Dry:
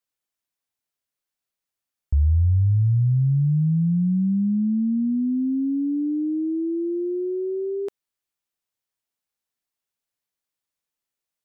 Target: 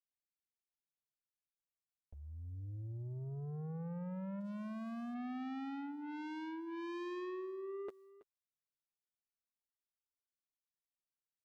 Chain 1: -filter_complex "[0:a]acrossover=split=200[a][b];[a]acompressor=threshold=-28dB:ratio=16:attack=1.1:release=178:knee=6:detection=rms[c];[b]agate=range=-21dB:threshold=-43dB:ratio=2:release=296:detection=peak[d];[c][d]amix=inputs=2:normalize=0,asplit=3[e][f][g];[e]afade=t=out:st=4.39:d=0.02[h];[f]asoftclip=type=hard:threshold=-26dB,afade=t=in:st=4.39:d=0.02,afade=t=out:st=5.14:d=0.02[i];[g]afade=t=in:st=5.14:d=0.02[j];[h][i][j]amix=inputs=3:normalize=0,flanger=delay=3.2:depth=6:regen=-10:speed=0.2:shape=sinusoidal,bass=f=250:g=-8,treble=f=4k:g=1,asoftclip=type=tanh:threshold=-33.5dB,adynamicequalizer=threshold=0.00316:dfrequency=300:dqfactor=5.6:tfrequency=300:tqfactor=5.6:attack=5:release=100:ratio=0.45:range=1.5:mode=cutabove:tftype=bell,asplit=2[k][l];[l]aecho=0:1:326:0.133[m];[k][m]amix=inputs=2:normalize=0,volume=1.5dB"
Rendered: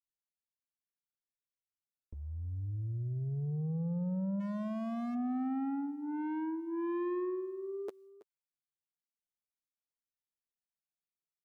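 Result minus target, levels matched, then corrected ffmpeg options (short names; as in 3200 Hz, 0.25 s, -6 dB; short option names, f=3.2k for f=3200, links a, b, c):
compressor: peak gain reduction -8 dB; soft clip: distortion -6 dB
-filter_complex "[0:a]acrossover=split=200[a][b];[a]acompressor=threshold=-36.5dB:ratio=16:attack=1.1:release=178:knee=6:detection=rms[c];[b]agate=range=-21dB:threshold=-43dB:ratio=2:release=296:detection=peak[d];[c][d]amix=inputs=2:normalize=0,asplit=3[e][f][g];[e]afade=t=out:st=4.39:d=0.02[h];[f]asoftclip=type=hard:threshold=-26dB,afade=t=in:st=4.39:d=0.02,afade=t=out:st=5.14:d=0.02[i];[g]afade=t=in:st=5.14:d=0.02[j];[h][i][j]amix=inputs=3:normalize=0,flanger=delay=3.2:depth=6:regen=-10:speed=0.2:shape=sinusoidal,bass=f=250:g=-8,treble=f=4k:g=1,asoftclip=type=tanh:threshold=-43dB,adynamicequalizer=threshold=0.00316:dfrequency=300:dqfactor=5.6:tfrequency=300:tqfactor=5.6:attack=5:release=100:ratio=0.45:range=1.5:mode=cutabove:tftype=bell,asplit=2[k][l];[l]aecho=0:1:326:0.133[m];[k][m]amix=inputs=2:normalize=0,volume=1.5dB"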